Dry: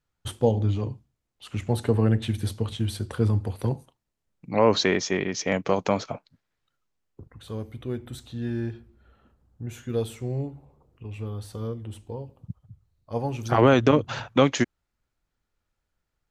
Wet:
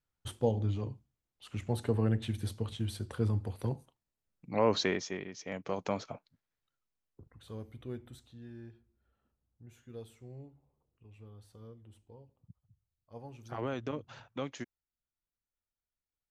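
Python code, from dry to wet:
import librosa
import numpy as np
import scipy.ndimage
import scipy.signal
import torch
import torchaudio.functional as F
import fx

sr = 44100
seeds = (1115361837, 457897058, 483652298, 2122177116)

y = fx.gain(x, sr, db=fx.line((4.86, -8.0), (5.36, -17.0), (5.89, -10.0), (7.96, -10.0), (8.46, -19.0)))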